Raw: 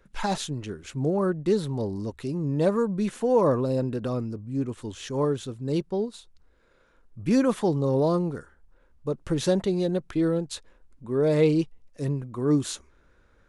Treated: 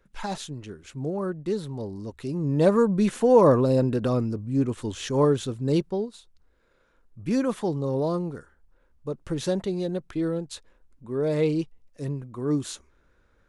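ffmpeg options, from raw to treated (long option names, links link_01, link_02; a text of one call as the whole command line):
ffmpeg -i in.wav -af "volume=4.5dB,afade=type=in:start_time=2.03:duration=0.78:silence=0.354813,afade=type=out:start_time=5.67:duration=0.41:silence=0.421697" out.wav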